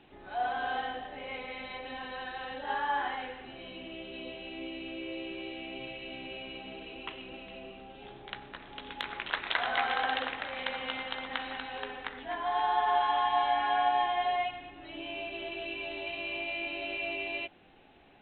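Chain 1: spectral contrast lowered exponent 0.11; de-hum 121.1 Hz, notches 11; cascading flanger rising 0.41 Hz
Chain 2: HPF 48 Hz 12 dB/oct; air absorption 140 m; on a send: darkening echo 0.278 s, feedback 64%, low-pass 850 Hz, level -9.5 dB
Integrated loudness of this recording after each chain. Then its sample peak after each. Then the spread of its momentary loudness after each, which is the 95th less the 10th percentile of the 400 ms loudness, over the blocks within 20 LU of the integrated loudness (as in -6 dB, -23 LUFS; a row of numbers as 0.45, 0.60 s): -36.5, -34.5 LUFS; -12.0, -15.5 dBFS; 17, 17 LU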